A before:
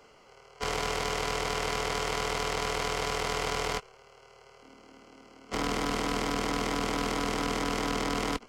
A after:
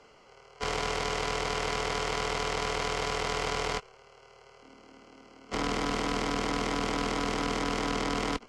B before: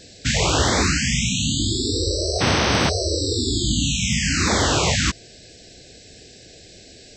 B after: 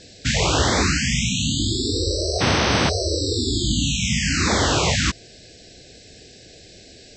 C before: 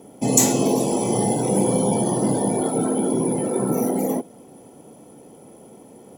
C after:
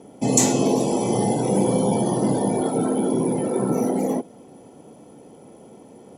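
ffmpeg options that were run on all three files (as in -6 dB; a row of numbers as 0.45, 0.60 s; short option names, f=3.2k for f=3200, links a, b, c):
-af "lowpass=8.1k"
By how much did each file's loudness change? 0.0, -0.5, -0.5 LU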